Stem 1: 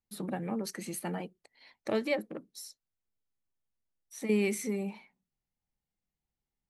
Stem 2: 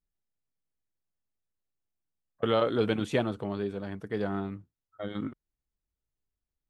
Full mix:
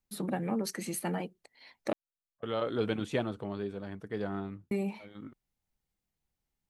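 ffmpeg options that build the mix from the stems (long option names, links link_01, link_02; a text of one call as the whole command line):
ffmpeg -i stem1.wav -i stem2.wav -filter_complex "[0:a]volume=2.5dB,asplit=3[link_01][link_02][link_03];[link_01]atrim=end=1.93,asetpts=PTS-STARTPTS,afade=type=out:start_time=1.926:duration=0.004:curve=hsin[link_04];[link_02]atrim=start=1.93:end=4.71,asetpts=PTS-STARTPTS,volume=0[link_05];[link_03]atrim=start=4.71,asetpts=PTS-STARTPTS,afade=type=in:duration=0.004:curve=hsin[link_06];[link_04][link_05][link_06]concat=n=3:v=0:a=1,asplit=2[link_07][link_08];[1:a]volume=-4dB[link_09];[link_08]apad=whole_len=295436[link_10];[link_09][link_10]sidechaincompress=threshold=-46dB:ratio=6:attack=24:release=627[link_11];[link_07][link_11]amix=inputs=2:normalize=0" out.wav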